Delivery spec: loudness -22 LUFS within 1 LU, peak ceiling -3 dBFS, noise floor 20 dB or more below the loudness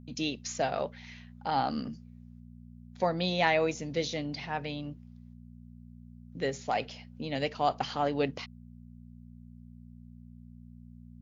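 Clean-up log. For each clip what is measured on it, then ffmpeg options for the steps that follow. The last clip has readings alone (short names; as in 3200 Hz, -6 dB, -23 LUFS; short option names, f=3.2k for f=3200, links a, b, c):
hum 60 Hz; harmonics up to 240 Hz; hum level -49 dBFS; loudness -32.0 LUFS; peak -10.5 dBFS; loudness target -22.0 LUFS
-> -af "bandreject=f=60:t=h:w=4,bandreject=f=120:t=h:w=4,bandreject=f=180:t=h:w=4,bandreject=f=240:t=h:w=4"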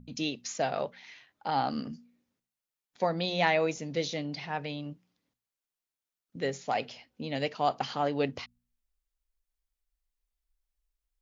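hum none; loudness -32.0 LUFS; peak -10.5 dBFS; loudness target -22.0 LUFS
-> -af "volume=10dB,alimiter=limit=-3dB:level=0:latency=1"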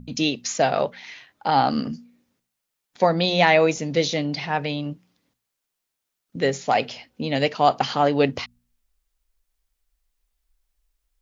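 loudness -22.0 LUFS; peak -3.0 dBFS; noise floor -81 dBFS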